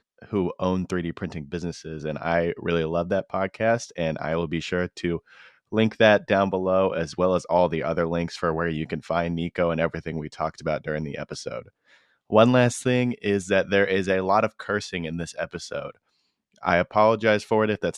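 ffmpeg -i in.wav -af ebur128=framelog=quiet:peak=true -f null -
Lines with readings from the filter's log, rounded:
Integrated loudness:
  I:         -24.4 LUFS
  Threshold: -34.7 LUFS
Loudness range:
  LRA:         4.9 LU
  Threshold: -44.7 LUFS
  LRA low:   -27.3 LUFS
  LRA high:  -22.4 LUFS
True peak:
  Peak:       -2.3 dBFS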